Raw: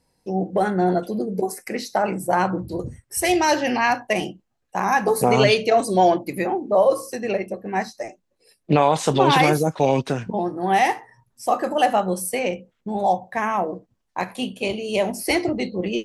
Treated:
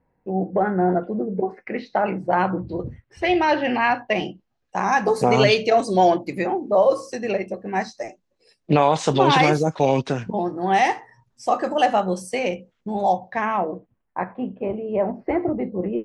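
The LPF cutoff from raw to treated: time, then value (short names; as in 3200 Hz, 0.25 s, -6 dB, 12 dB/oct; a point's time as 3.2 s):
LPF 24 dB/oct
1.41 s 2000 Hz
1.97 s 3500 Hz
3.83 s 3500 Hz
4.84 s 7300 Hz
13.05 s 7300 Hz
13.71 s 3600 Hz
14.34 s 1500 Hz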